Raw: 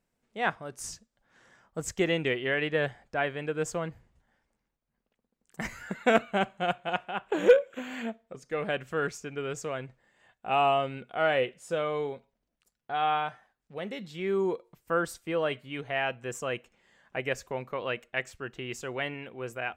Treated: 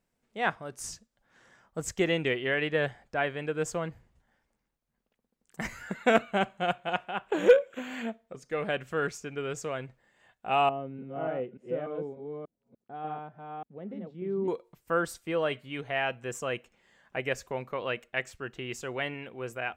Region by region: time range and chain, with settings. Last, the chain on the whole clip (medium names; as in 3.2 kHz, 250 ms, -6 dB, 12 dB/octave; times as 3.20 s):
10.69–14.48 s: chunks repeated in reverse 294 ms, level -2 dB + band-pass filter 230 Hz, Q 1.1
whole clip: none